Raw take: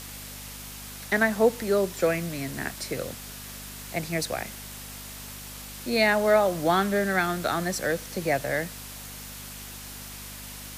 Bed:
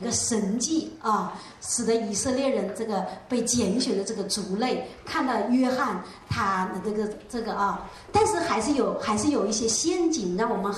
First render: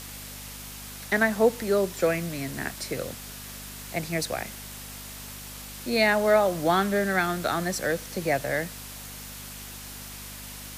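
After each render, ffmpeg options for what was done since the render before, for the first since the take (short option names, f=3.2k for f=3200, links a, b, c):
-af anull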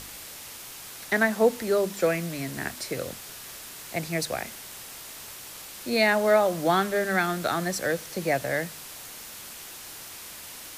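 -af "bandreject=f=50:t=h:w=4,bandreject=f=100:t=h:w=4,bandreject=f=150:t=h:w=4,bandreject=f=200:t=h:w=4,bandreject=f=250:t=h:w=4"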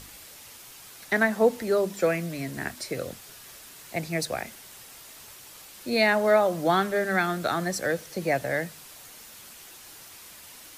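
-af "afftdn=nr=6:nf=-42"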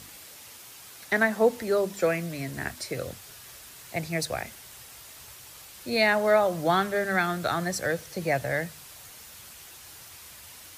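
-af "asubboost=boost=5:cutoff=99,highpass=75"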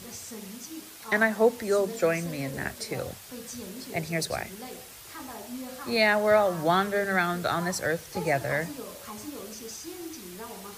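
-filter_complex "[1:a]volume=-16.5dB[a];[0:a][a]amix=inputs=2:normalize=0"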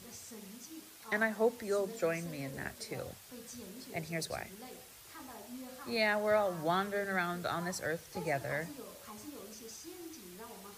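-af "volume=-8.5dB"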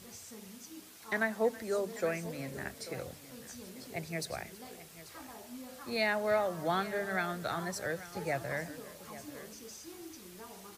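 -af "aecho=1:1:325|839:0.1|0.158"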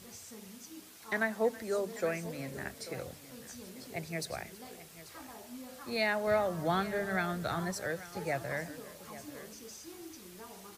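-filter_complex "[0:a]asettb=1/sr,asplit=3[a][b][c];[a]atrim=end=6.274[d];[b]atrim=start=6.27:end=7.73,asetpts=PTS-STARTPTS,afade=t=in:d=0.004:c=qsin,afade=t=out:st=1.456:d=0.004:c=qsin,lowshelf=f=140:g=11[e];[c]atrim=start=7.726[f];[d][e]acrossfade=d=0.004:c1=hsin:c2=qsin[g];[g][f]acrossfade=d=0.004:c1=qsin:c2=hsin"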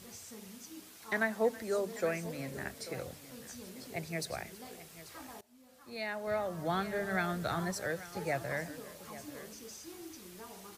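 -filter_complex "[0:a]asplit=2[a][b];[a]atrim=end=5.41,asetpts=PTS-STARTPTS,afade=t=out:st=5.406:d=0.004:c=hsin:silence=0.0891251[c];[b]atrim=start=5.41,asetpts=PTS-STARTPTS,afade=t=in:d=1.85:silence=0.0891251[d];[c][d]concat=n=2:v=0:a=1"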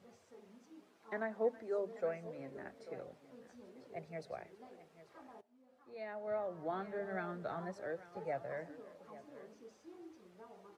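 -af "flanger=delay=1.4:depth=3.6:regen=-60:speed=0.48:shape=sinusoidal,bandpass=f=520:t=q:w=0.73:csg=0"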